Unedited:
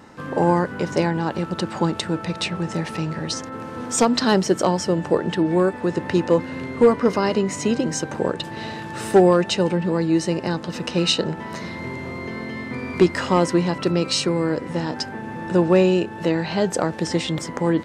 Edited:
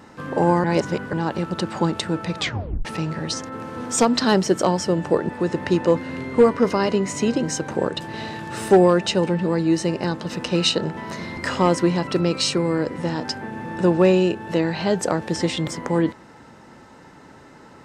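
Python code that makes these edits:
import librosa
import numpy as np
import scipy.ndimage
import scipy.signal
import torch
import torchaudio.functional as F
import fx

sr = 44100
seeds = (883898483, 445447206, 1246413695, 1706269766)

y = fx.edit(x, sr, fx.reverse_span(start_s=0.64, length_s=0.49),
    fx.tape_stop(start_s=2.38, length_s=0.47),
    fx.cut(start_s=5.29, length_s=0.43),
    fx.cut(start_s=11.8, length_s=1.28), tone=tone)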